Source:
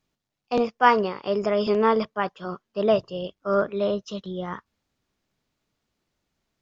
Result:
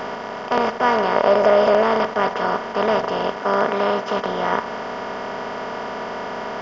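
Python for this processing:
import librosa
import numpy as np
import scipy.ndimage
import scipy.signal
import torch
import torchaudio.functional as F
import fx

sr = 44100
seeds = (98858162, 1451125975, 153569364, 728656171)

y = fx.bin_compress(x, sr, power=0.2)
y = fx.peak_eq(y, sr, hz=580.0, db=10.0, octaves=0.41, at=(1.15, 1.83))
y = fx.highpass(y, sr, hz=110.0, slope=12, at=(3.38, 4.17))
y = y * librosa.db_to_amplitude(-4.5)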